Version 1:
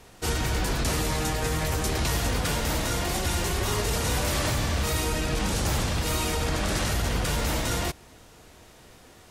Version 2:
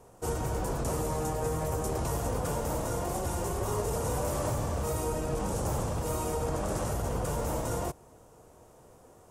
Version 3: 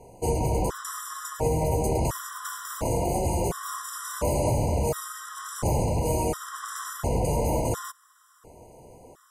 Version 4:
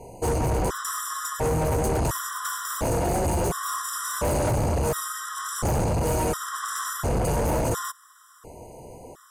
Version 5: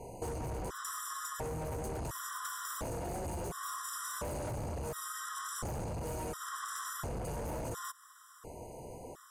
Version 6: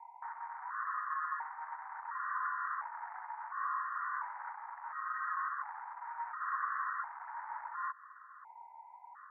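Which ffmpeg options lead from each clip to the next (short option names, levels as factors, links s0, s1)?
-af "equalizer=f=125:t=o:w=1:g=5,equalizer=f=500:t=o:w=1:g=8,equalizer=f=1000:t=o:w=1:g=6,equalizer=f=2000:t=o:w=1:g=-8,equalizer=f=4000:t=o:w=1:g=-11,equalizer=f=8000:t=o:w=1:g=4,volume=0.398"
-af "afftfilt=real='re*gt(sin(2*PI*0.71*pts/sr)*(1-2*mod(floor(b*sr/1024/1000),2)),0)':imag='im*gt(sin(2*PI*0.71*pts/sr)*(1-2*mod(floor(b*sr/1024/1000),2)),0)':win_size=1024:overlap=0.75,volume=2.24"
-af "asoftclip=type=tanh:threshold=0.0501,volume=2"
-af "acompressor=threshold=0.02:ratio=6,volume=0.631"
-af "asuperpass=centerf=1300:order=12:qfactor=1.2,volume=2"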